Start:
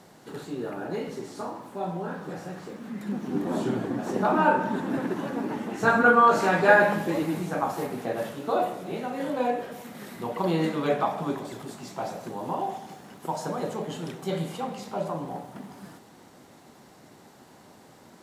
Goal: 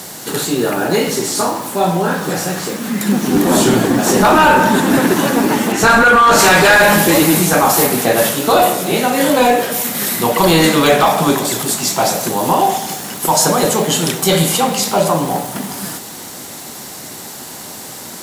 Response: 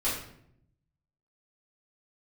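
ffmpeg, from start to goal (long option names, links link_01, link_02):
-filter_complex "[0:a]asettb=1/sr,asplit=3[link_01][link_02][link_03];[link_01]atrim=end=5.724[link_04];[link_02]atrim=start=5.72:end=6.39,asetpts=PTS-STARTPTS,afade=type=in:duration=0.004:curve=qsin,afade=type=out:start_time=0.666:duration=0.004:curve=qsin,highshelf=frequency=4500:gain=-7[link_05];[link_03]atrim=start=6.386[link_06];[link_04][link_05]acrossfade=duration=0.004:curve1=hsin:curve2=qsin[link_07];[link_07][link_06]acrossfade=duration=0.004:curve1=qsin:curve2=hsin,crystalizer=i=5:c=0,apsyclip=21dB,volume=-5dB"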